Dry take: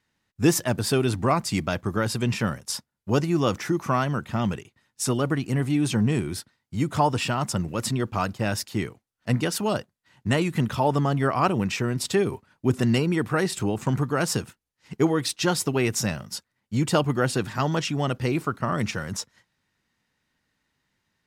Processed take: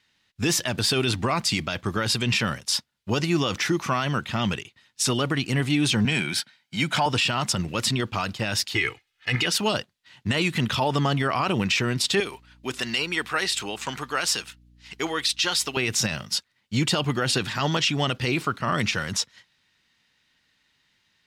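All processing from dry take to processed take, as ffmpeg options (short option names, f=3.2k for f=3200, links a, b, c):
-filter_complex "[0:a]asettb=1/sr,asplit=3[a][b][c];[a]atrim=end=6.054[d];[b]atrim=start=6.05:end=7.06,asetpts=PTS-STARTPTS,afade=t=in:d=0.004:c=qsin,afade=t=out:st=1.006:d=0.004:c=qsin,highpass=f=150:w=0.5412,highpass=f=150:w=1.3066,equalizer=f=2k:t=o:w=1.2:g=5.5,aecho=1:1:1.3:0.47,atrim=end_sample=44541[e];[c]atrim=start=7.056[f];[d][e]acrossfade=d=0.004:c1=hsin:c2=qsin[g];[g][f]acrossfade=d=0.004:c1=qsin:c2=hsin,asettb=1/sr,asplit=3[h][i][j];[h]atrim=end=8.754[k];[i]atrim=start=8.75:end=9.46,asetpts=PTS-STARTPTS,afade=t=in:d=0.004:c=qsin,afade=t=out:st=0.706:d=0.004:c=qsin,equalizer=f=2.1k:t=o:w=1.4:g=12.5,aecho=1:1:2.4:0.69,atrim=end_sample=31311[l];[j]atrim=start=9.456[m];[k][l]acrossfade=d=0.004:c1=hsin:c2=qsin[n];[n][m]acrossfade=d=0.004:c1=qsin:c2=hsin,asettb=1/sr,asplit=3[o][p][q];[o]atrim=end=12.204[r];[p]atrim=start=12.2:end=15.77,asetpts=PTS-STARTPTS,afade=t=in:d=0.004:c=qsin,afade=t=out:st=3.566:d=0.004:c=qsin,highpass=f=900:p=1,aeval=exprs='val(0)+0.002*(sin(2*PI*60*n/s)+sin(2*PI*2*60*n/s)/2+sin(2*PI*3*60*n/s)/3+sin(2*PI*4*60*n/s)/4+sin(2*PI*5*60*n/s)/5)':c=same[s];[q]atrim=start=15.766[t];[r][s]acrossfade=d=0.004:c1=hsin:c2=qsin[u];[u][t]acrossfade=d=0.004:c1=qsin:c2=hsin,equalizer=f=3.4k:w=0.65:g=13,alimiter=limit=-13dB:level=0:latency=1:release=35"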